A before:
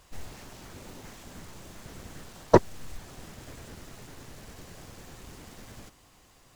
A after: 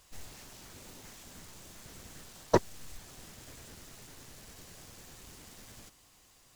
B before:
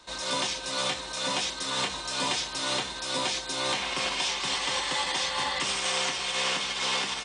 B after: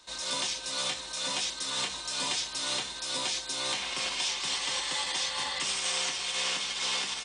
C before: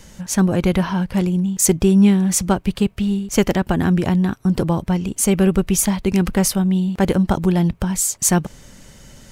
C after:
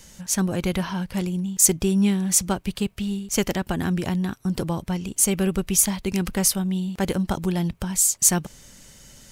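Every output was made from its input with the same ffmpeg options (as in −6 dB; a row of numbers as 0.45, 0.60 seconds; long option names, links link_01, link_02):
-af "highshelf=frequency=2700:gain=9,volume=-7.5dB"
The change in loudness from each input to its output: −18.0, −2.0, −4.5 LU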